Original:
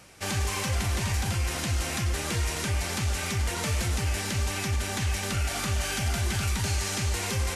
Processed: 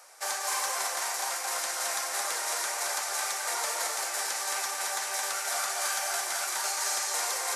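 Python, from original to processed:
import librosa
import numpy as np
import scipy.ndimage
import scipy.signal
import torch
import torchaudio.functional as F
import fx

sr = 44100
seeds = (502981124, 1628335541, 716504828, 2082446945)

p1 = scipy.signal.sosfilt(scipy.signal.butter(4, 630.0, 'highpass', fs=sr, output='sos'), x)
p2 = fx.peak_eq(p1, sr, hz=2800.0, db=-12.0, octaves=0.98)
p3 = p2 + fx.echo_single(p2, sr, ms=219, db=-3.0, dry=0)
y = F.gain(torch.from_numpy(p3), 3.5).numpy()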